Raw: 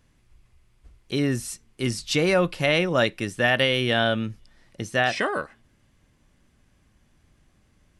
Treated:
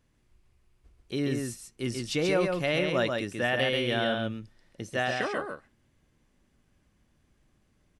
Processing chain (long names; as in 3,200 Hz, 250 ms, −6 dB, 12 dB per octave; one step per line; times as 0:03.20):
parametric band 370 Hz +3 dB 1.7 octaves
on a send: single-tap delay 136 ms −4 dB
on the sum: level −8 dB